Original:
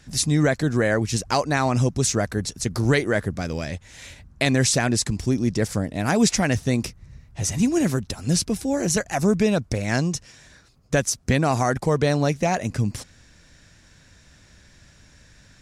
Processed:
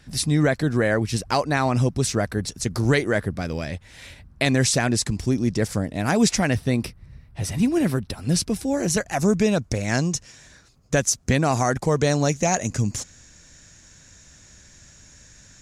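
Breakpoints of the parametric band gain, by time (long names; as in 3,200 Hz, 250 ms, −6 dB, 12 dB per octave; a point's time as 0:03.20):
parametric band 6,700 Hz 0.39 octaves
−7.5 dB
from 0:02.48 −0.5 dB
from 0:03.18 −8.5 dB
from 0:04.44 −1.5 dB
from 0:06.51 −13.5 dB
from 0:08.36 −2 dB
from 0:09.20 +5 dB
from 0:11.97 +14 dB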